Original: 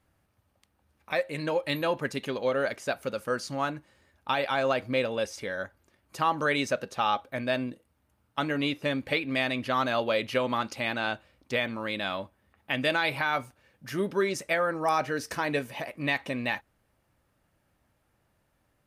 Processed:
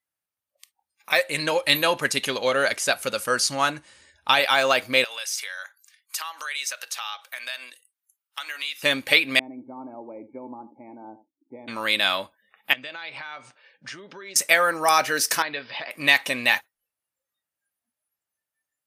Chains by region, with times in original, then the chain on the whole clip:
1.27–4.40 s: low-pass 12 kHz 24 dB/octave + bass shelf 110 Hz +11.5 dB
5.04–8.83 s: high-pass 1.2 kHz + compression 3:1, threshold -42 dBFS
9.39–11.68 s: cascade formant filter u + delay 82 ms -14 dB
12.73–14.36 s: compression 8:1, threshold -41 dBFS + Chebyshev band-pass 120–9300 Hz, order 3 + distance through air 110 m
15.42–15.91 s: compression 2:1, threshold -38 dBFS + rippled Chebyshev low-pass 5.1 kHz, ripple 3 dB
whole clip: spectral noise reduction 27 dB; tilt EQ +4 dB/octave; trim +7 dB

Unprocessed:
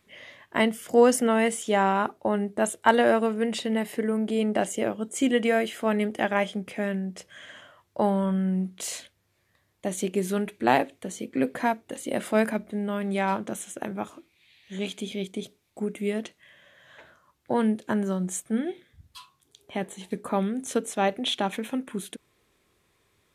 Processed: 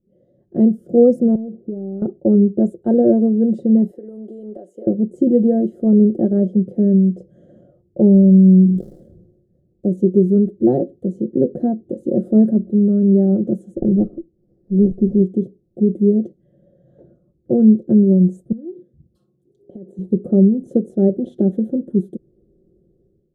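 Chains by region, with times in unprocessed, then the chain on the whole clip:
1.35–2.02 s: low-pass 1.2 kHz 24 dB/octave + compression 8:1, threshold -33 dBFS
3.91–4.87 s: high-pass 730 Hz + compression 2.5:1, threshold -38 dBFS
8.14–9.87 s: dead-time distortion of 0.12 ms + decay stretcher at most 55 dB/s
13.77–15.22 s: waveshaping leveller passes 1 + distance through air 320 m + sliding maximum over 9 samples
18.52–19.99 s: high-pass 260 Hz 6 dB/octave + compression 12:1, threshold -41 dBFS
whole clip: inverse Chebyshev low-pass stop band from 920 Hz, stop band 40 dB; comb 5.6 ms, depth 58%; level rider gain up to 14 dB

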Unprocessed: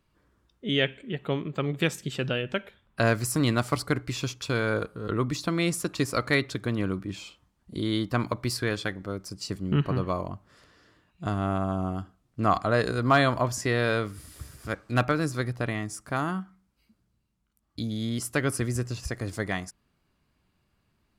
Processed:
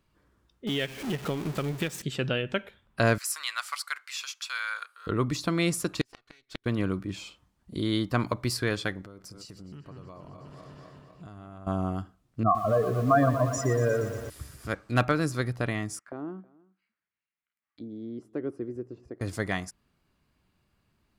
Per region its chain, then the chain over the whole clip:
0.67–2.02 s: jump at every zero crossing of -29.5 dBFS + transient shaper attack +5 dB, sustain -9 dB + compression 3:1, threshold -27 dBFS
3.18–5.07 s: high-pass 1.2 kHz 24 dB/octave + tape noise reduction on one side only encoder only
6.01–6.66 s: comb filter that takes the minimum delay 2.7 ms + peaking EQ 3.7 kHz +12.5 dB 2.5 oct + inverted gate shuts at -16 dBFS, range -42 dB
9.01–11.67 s: backward echo that repeats 124 ms, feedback 75%, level -13 dB + compression 8:1, threshold -42 dBFS
12.43–14.30 s: spectral contrast enhancement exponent 2.8 + bit-crushed delay 118 ms, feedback 80%, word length 7-bit, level -11 dB
15.99–19.21 s: auto-wah 350–2100 Hz, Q 2.7, down, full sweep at -31.5 dBFS + delay 320 ms -24 dB
whole clip: none

